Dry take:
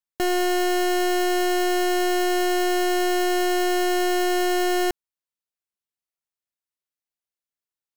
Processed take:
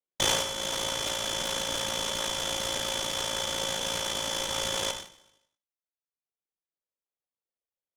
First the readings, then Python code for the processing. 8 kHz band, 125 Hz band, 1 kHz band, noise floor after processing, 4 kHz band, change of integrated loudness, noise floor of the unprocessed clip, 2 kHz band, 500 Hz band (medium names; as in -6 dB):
+1.5 dB, no reading, -12.0 dB, under -85 dBFS, +1.5 dB, -6.5 dB, under -85 dBFS, -8.5 dB, -13.0 dB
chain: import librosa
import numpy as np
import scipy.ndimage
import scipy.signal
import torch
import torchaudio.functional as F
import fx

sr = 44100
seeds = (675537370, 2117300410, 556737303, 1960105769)

y = x * np.sin(2.0 * np.pi * 28.0 * np.arange(len(x)) / sr)
y = fx.rider(y, sr, range_db=10, speed_s=0.5)
y = scipy.signal.sosfilt(scipy.signal.butter(2, 300.0, 'highpass', fs=sr, output='sos'), y)
y = fx.echo_feedback(y, sr, ms=78, feedback_pct=57, wet_db=-10.0)
y = fx.dereverb_blind(y, sr, rt60_s=1.4)
y = fx.graphic_eq(y, sr, hz=(500, 1000, 2000), db=(5, -7, -5))
y = fx.freq_invert(y, sr, carrier_hz=3800)
y = fx.peak_eq(y, sr, hz=520.0, db=11.5, octaves=1.4)
y = fx.rev_gated(y, sr, seeds[0], gate_ms=220, shape='falling', drr_db=4.5)
y = fx.buffer_crackle(y, sr, first_s=0.72, period_s=0.34, block=512, kind='repeat')
y = fx.noise_mod_delay(y, sr, seeds[1], noise_hz=2600.0, depth_ms=0.045)
y = F.gain(torch.from_numpy(y), -2.5).numpy()